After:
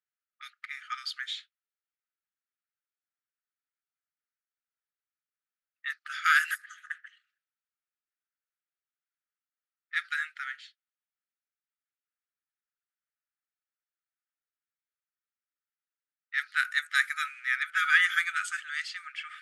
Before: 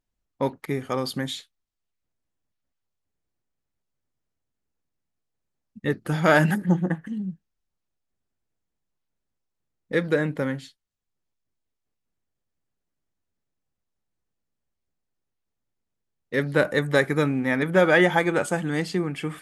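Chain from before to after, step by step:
low-pass that shuts in the quiet parts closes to 1,800 Hz, open at −17 dBFS
linear-phase brick-wall high-pass 1,200 Hz

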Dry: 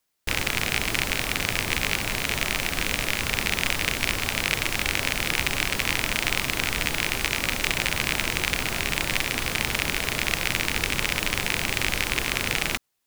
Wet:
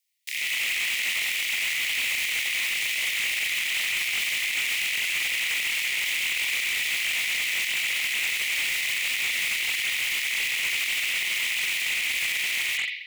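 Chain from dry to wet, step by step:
Butterworth high-pass 1,900 Hz 96 dB per octave
spring reverb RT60 1.1 s, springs 39/60 ms, chirp 50 ms, DRR −3 dB
brickwall limiter −16 dBFS, peak gain reduction 8.5 dB
automatic gain control gain up to 5 dB
hard clipping −22.5 dBFS, distortion −8 dB
level −1 dB

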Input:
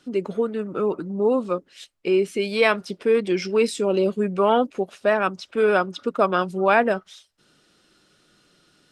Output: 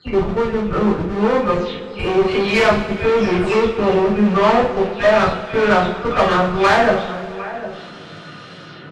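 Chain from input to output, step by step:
every frequency bin delayed by itself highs early, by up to 279 ms
high-pass filter 71 Hz 24 dB per octave
hum removal 373 Hz, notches 2
in parallel at −7.5 dB: comparator with hysteresis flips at −27.5 dBFS
on the sum: low-pass filter 3,000 Hz 12 dB per octave
single-tap delay 753 ms −22 dB
tube saturation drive 19 dB, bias 0.4
reversed playback
upward compression, threshold −31 dBFS
reversed playback
coupled-rooms reverb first 0.45 s, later 3.2 s, from −18 dB, DRR −6 dB
level +3.5 dB

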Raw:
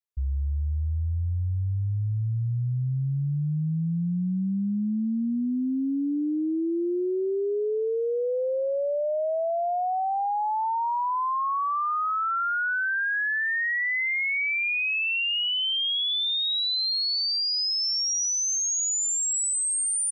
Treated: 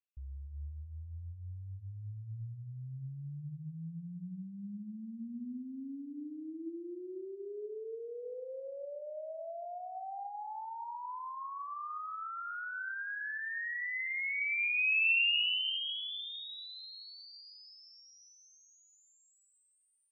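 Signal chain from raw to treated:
brickwall limiter −28.5 dBFS, peak gain reduction 5.5 dB
transistor ladder low-pass 2,900 Hz, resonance 75%
reverb whose tail is shaped and stops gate 450 ms flat, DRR 8.5 dB

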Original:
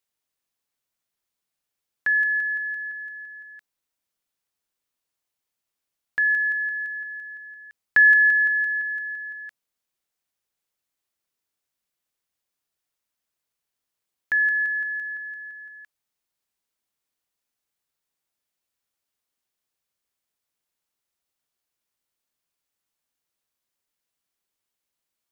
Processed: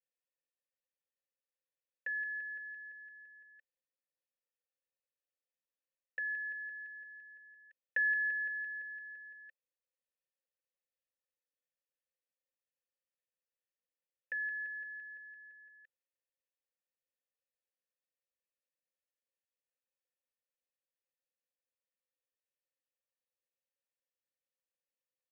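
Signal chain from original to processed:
formant filter e
comb filter 3.9 ms, depth 83%
level −5 dB

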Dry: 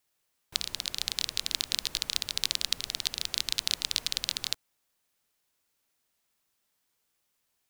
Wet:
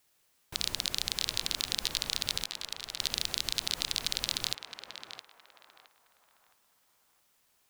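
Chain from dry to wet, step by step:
0:02.39–0:03.00: downward compressor 6 to 1, threshold −41 dBFS, peak gain reduction 18.5 dB
brickwall limiter −15 dBFS, peak gain reduction 11.5 dB
feedback echo with a band-pass in the loop 666 ms, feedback 42%, band-pass 980 Hz, level −4 dB
level +6.5 dB

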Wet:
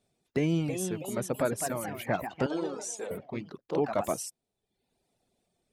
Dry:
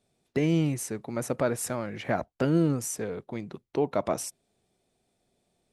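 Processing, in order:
delay with pitch and tempo change per echo 361 ms, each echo +2 semitones, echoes 3, each echo −6 dB
0:02.46–0:03.11: loudspeaker in its box 420–8,200 Hz, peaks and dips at 910 Hz +4 dB, 1,900 Hz −7 dB, 3,600 Hz +4 dB
reverb reduction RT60 0.8 s
level −1.5 dB

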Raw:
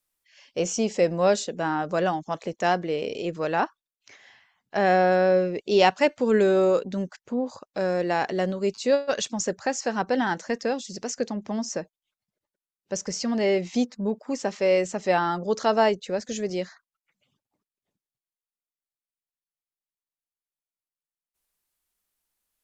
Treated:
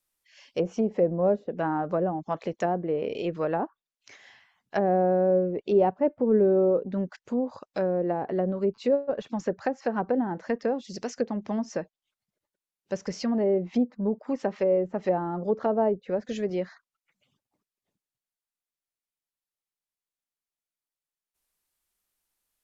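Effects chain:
treble cut that deepens with the level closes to 590 Hz, closed at −20.5 dBFS

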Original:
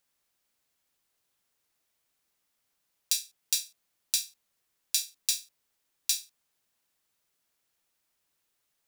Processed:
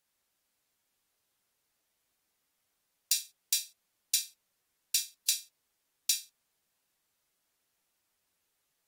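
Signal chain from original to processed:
level −1.5 dB
AAC 48 kbit/s 48,000 Hz

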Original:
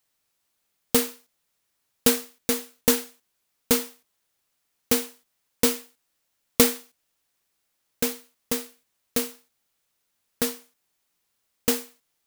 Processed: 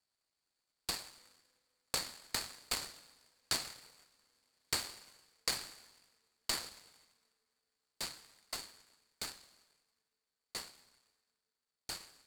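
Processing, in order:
source passing by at 0:03.96, 22 m/s, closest 26 metres
downward compressor 4 to 1, threshold −28 dBFS, peak gain reduction 10.5 dB
resonant band-pass 4,500 Hz, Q 13
on a send at −13.5 dB: convolution reverb RT60 3.2 s, pre-delay 83 ms
on the sum: short delay modulated by noise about 3,100 Hz, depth 0.032 ms
level +15 dB

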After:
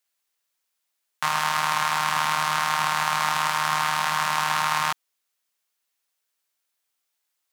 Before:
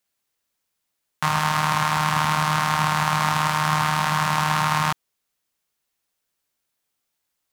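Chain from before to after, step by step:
high-pass filter 800 Hz 6 dB per octave

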